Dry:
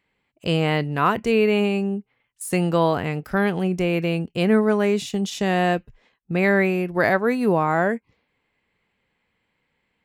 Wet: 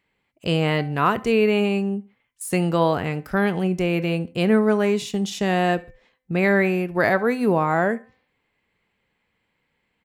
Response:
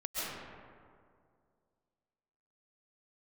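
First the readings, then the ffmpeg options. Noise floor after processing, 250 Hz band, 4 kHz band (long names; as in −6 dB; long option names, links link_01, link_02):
−73 dBFS, 0.0 dB, 0.0 dB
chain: -filter_complex "[0:a]bandreject=frequency=256.3:width_type=h:width=4,bandreject=frequency=512.6:width_type=h:width=4,bandreject=frequency=768.9:width_type=h:width=4,bandreject=frequency=1025.2:width_type=h:width=4,bandreject=frequency=1281.5:width_type=h:width=4,bandreject=frequency=1537.8:width_type=h:width=4,bandreject=frequency=1794.1:width_type=h:width=4,bandreject=frequency=2050.4:width_type=h:width=4,bandreject=frequency=2306.7:width_type=h:width=4,asplit=2[link_01][link_02];[link_02]aecho=0:1:70|140:0.0794|0.0222[link_03];[link_01][link_03]amix=inputs=2:normalize=0"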